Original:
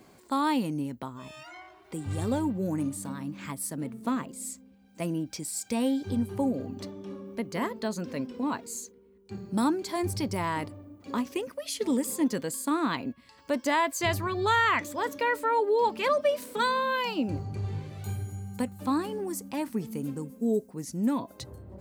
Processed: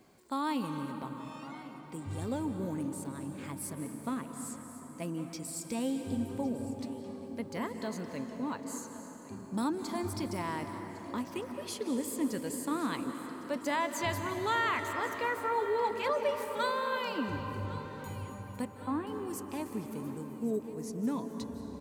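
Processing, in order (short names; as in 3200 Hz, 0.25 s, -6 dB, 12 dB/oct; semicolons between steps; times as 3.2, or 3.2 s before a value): 18.65–19.07 Chebyshev band-pass 200–3200 Hz, order 5; feedback echo 1.107 s, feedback 47%, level -17.5 dB; on a send at -6 dB: reverb RT60 5.0 s, pre-delay 0.146 s; on the sum: gain -6.5 dB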